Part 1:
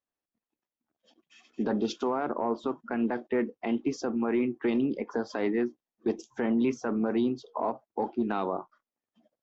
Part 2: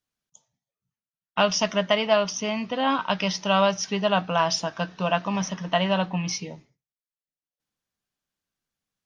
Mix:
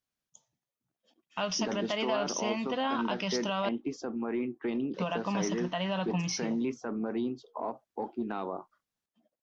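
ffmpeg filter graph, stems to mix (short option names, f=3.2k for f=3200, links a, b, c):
-filter_complex "[0:a]volume=-5.5dB[a];[1:a]alimiter=limit=-18.5dB:level=0:latency=1:release=101,volume=-4dB,asplit=3[b][c][d];[b]atrim=end=3.69,asetpts=PTS-STARTPTS,afade=t=out:st=3.686:d=0.004:c=hsin[e];[c]atrim=start=3.69:end=4.94,asetpts=PTS-STARTPTS,volume=0[f];[d]atrim=start=4.94,asetpts=PTS-STARTPTS,afade=t=in:d=0.004:c=hsin[g];[e][f][g]concat=n=3:v=0:a=1[h];[a][h]amix=inputs=2:normalize=0"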